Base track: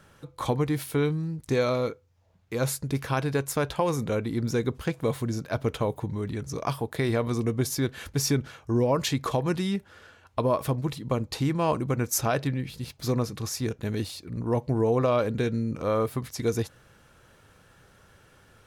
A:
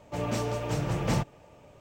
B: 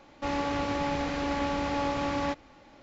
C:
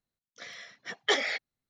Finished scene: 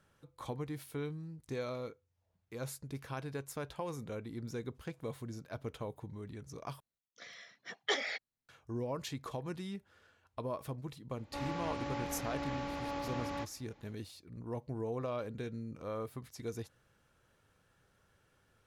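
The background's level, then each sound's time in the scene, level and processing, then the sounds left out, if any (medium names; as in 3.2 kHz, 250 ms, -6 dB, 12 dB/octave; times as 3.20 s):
base track -14.5 dB
6.80 s: replace with C -7 dB
11.11 s: add B -10 dB
not used: A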